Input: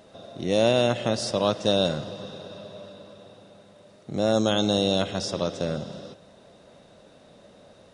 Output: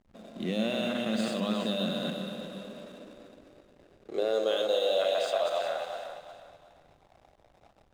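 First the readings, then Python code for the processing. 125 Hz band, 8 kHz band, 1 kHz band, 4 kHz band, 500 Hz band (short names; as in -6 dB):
-11.0 dB, -10.5 dB, -4.5 dB, -6.0 dB, -4.5 dB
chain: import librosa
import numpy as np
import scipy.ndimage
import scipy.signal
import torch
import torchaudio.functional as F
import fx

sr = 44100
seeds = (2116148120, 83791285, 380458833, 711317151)

p1 = fx.reverse_delay_fb(x, sr, ms=117, feedback_pct=42, wet_db=-4.0)
p2 = scipy.signal.lfilter(np.full(8, 1.0 / 8), 1.0, p1)
p3 = fx.tilt_shelf(p2, sr, db=-9.5, hz=1500.0)
p4 = fx.over_compress(p3, sr, threshold_db=-33.0, ratio=-0.5)
p5 = p3 + (p4 * 10.0 ** (-1.0 / 20.0))
p6 = fx.notch(p5, sr, hz=910.0, q=7.3)
p7 = fx.filter_sweep_highpass(p6, sr, from_hz=210.0, to_hz=800.0, start_s=2.53, end_s=5.87, q=6.3)
p8 = fx.hum_notches(p7, sr, base_hz=50, count=6)
p9 = fx.backlash(p8, sr, play_db=-35.0)
p10 = p9 + fx.echo_feedback(p9, sr, ms=363, feedback_pct=31, wet_db=-10.5, dry=0)
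p11 = fx.end_taper(p10, sr, db_per_s=210.0)
y = p11 * 10.0 ** (-8.5 / 20.0)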